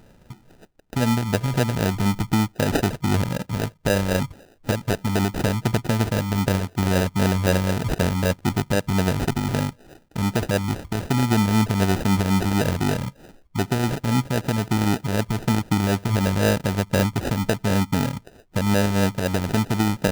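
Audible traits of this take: phasing stages 2, 3.9 Hz, lowest notch 600–3500 Hz; aliases and images of a low sample rate 1.1 kHz, jitter 0%

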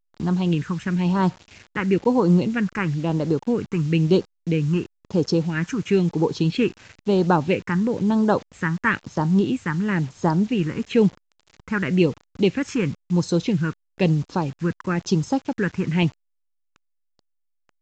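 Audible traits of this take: phasing stages 4, 1 Hz, lowest notch 630–2400 Hz; a quantiser's noise floor 8-bit, dither none; A-law

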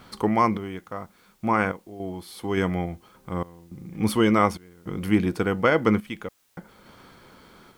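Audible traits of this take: random-step tremolo, depth 100%; a quantiser's noise floor 12-bit, dither triangular

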